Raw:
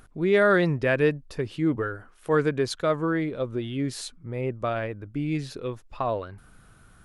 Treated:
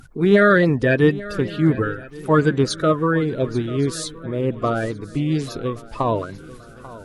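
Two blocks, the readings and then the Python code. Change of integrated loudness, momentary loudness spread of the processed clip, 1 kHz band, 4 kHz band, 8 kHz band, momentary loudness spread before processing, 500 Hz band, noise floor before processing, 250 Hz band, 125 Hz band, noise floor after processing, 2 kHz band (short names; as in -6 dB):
+6.5 dB, 13 LU, +6.5 dB, +6.0 dB, +7.5 dB, 13 LU, +5.0 dB, -55 dBFS, +8.0 dB, +8.5 dB, -42 dBFS, +6.0 dB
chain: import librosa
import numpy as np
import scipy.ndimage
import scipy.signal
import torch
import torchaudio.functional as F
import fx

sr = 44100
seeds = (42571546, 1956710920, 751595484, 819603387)

y = fx.spec_quant(x, sr, step_db=30)
y = fx.dynamic_eq(y, sr, hz=1900.0, q=1.2, threshold_db=-36.0, ratio=4.0, max_db=-4)
y = fx.echo_swing(y, sr, ms=1121, ratio=3, feedback_pct=36, wet_db=-18.0)
y = F.gain(torch.from_numpy(y), 7.5).numpy()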